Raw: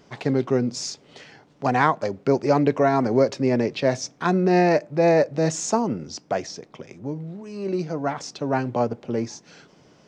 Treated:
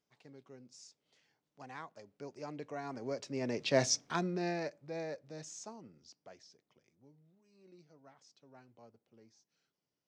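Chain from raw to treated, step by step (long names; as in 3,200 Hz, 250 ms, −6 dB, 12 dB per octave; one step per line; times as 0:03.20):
source passing by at 0:03.86, 10 m/s, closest 1.6 metres
high-shelf EQ 2,500 Hz +9.5 dB
level −7 dB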